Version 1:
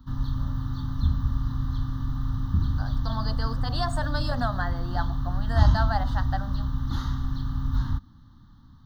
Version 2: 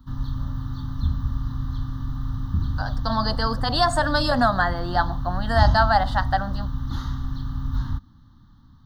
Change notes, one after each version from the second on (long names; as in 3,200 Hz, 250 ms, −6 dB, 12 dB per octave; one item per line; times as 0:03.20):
second voice +10.0 dB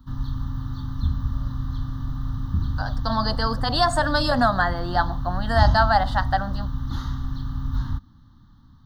first voice: entry +0.95 s